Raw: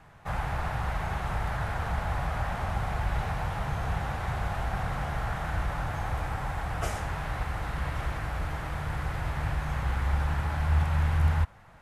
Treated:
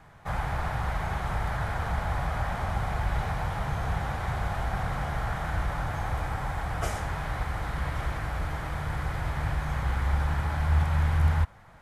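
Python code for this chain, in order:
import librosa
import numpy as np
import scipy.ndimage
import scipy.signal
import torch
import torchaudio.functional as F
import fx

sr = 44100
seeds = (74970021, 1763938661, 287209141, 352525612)

y = fx.notch(x, sr, hz=2700.0, q=15.0)
y = F.gain(torch.from_numpy(y), 1.0).numpy()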